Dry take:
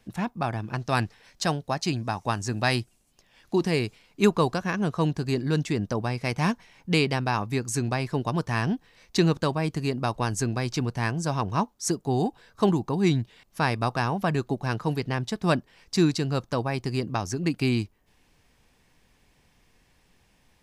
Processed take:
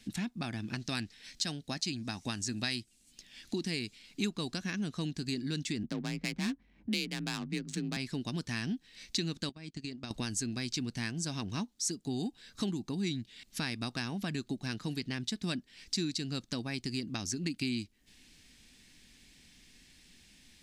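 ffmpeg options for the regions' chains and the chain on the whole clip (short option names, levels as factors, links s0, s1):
-filter_complex "[0:a]asettb=1/sr,asplit=3[s0][s1][s2];[s0]atrim=end=5.834[s3];[s1]atrim=start=5.83:end=7.97,asetpts=PTS-STARTPTS,afade=t=in:d=0.004:c=qsin,afade=t=out:st=2.136:d=0.004:c=qsin,adynamicsmooth=sensitivity=4.5:basefreq=810,afreqshift=37[s4];[s2]atrim=start=7.966[s5];[s3][s4]acrossfade=d=0.004:c1=hsin:c2=qsin[s6];[s6][s5]acrossfade=d=0.004:c1=qsin:c2=hsin,asettb=1/sr,asplit=3[s7][s8][s9];[s7]atrim=end=9.494[s10];[s8]atrim=start=9.49:end=10.11,asetpts=PTS-STARTPTS,afade=t=in:d=0.004:c=qsin,afade=t=out:st=0.616:d=0.004:c=qsin,agate=range=0.112:threshold=0.0355:ratio=16:release=100:detection=peak,lowpass=f=8000:w=0.5412,lowpass=f=8000:w=1.3066,acompressor=threshold=0.0158:ratio=10:attack=3.2:release=140:knee=1:detection=peak[s11];[s9]atrim=start=10.106[s12];[s10][s11]acrossfade=d=0.004:c1=hsin:c2=qsin[s13];[s13][s12]acrossfade=d=0.004:c1=qsin:c2=hsin,equalizer=f=125:t=o:w=1:g=-4,equalizer=f=250:t=o:w=1:g=8,equalizer=f=500:t=o:w=1:g=-7,equalizer=f=1000:t=o:w=1:g=-10,equalizer=f=2000:t=o:w=1:g=4,equalizer=f=4000:t=o:w=1:g=9,equalizer=f=8000:t=o:w=1:g=8,acompressor=threshold=0.0158:ratio=3"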